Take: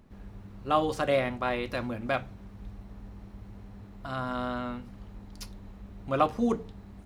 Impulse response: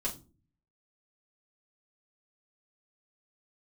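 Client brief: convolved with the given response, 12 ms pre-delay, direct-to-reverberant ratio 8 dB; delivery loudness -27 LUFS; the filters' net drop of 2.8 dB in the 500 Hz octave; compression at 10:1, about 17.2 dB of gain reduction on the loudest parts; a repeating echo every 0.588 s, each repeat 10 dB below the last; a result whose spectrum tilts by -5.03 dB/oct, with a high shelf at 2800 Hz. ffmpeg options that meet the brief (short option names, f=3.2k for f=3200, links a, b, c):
-filter_complex "[0:a]equalizer=f=500:t=o:g=-3.5,highshelf=f=2.8k:g=3.5,acompressor=threshold=-37dB:ratio=10,aecho=1:1:588|1176|1764|2352:0.316|0.101|0.0324|0.0104,asplit=2[a][b];[1:a]atrim=start_sample=2205,adelay=12[c];[b][c]afir=irnorm=-1:irlink=0,volume=-11dB[d];[a][d]amix=inputs=2:normalize=0,volume=15dB"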